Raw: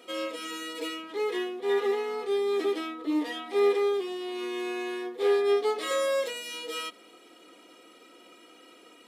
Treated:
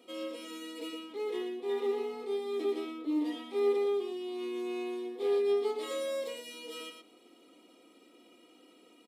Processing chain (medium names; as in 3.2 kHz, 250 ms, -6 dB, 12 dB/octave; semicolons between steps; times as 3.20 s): fifteen-band graphic EQ 250 Hz +7 dB, 1.6 kHz -9 dB, 6.3 kHz -3 dB; on a send: delay 116 ms -7 dB; on the sum: trim -7.5 dB